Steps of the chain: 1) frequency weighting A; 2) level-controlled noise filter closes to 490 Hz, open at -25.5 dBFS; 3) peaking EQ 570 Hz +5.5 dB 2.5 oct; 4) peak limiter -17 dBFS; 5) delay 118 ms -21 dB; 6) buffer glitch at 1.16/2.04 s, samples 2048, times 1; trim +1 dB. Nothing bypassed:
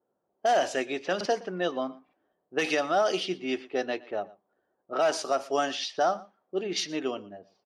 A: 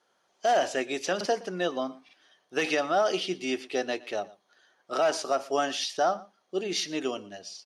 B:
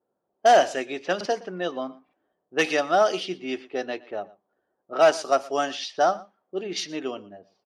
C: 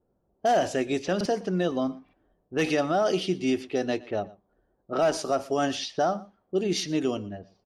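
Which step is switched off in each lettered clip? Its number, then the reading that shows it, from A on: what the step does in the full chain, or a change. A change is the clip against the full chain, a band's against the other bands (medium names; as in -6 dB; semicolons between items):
2, 8 kHz band +2.0 dB; 4, crest factor change +4.5 dB; 1, 125 Hz band +11.5 dB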